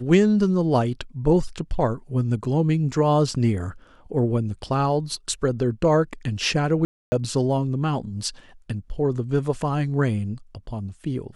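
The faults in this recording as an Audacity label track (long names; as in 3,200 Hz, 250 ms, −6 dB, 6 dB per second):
6.850000	7.120000	drop-out 270 ms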